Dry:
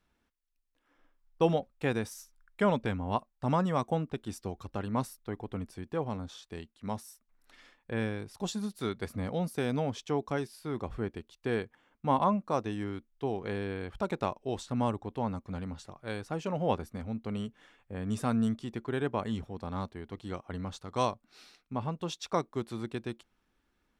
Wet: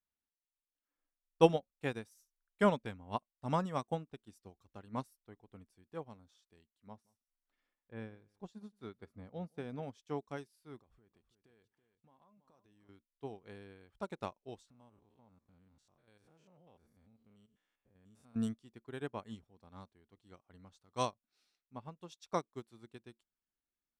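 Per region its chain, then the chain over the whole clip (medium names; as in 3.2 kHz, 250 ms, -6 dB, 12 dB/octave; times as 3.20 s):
6.87–9.83 s: low-pass 1.6 kHz 6 dB/octave + delay 175 ms -18.5 dB
10.78–12.89 s: compression 8:1, threshold -40 dBFS + feedback delay 329 ms, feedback 17%, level -11 dB
14.70–18.36 s: spectrogram pixelated in time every 100 ms + compression 2:1, threshold -42 dBFS
whole clip: treble shelf 4.2 kHz +7 dB; upward expansion 2.5:1, over -39 dBFS; trim +2.5 dB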